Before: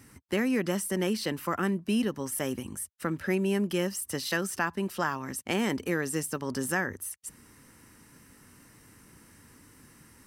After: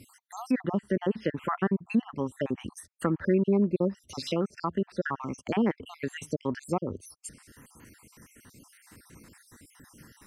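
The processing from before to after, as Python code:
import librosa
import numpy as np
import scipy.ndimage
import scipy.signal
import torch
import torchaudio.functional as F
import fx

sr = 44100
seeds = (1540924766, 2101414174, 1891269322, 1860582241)

y = fx.spec_dropout(x, sr, seeds[0], share_pct=55)
y = fx.env_lowpass_down(y, sr, base_hz=1300.0, full_db=-29.0)
y = y * librosa.db_to_amplitude(4.5)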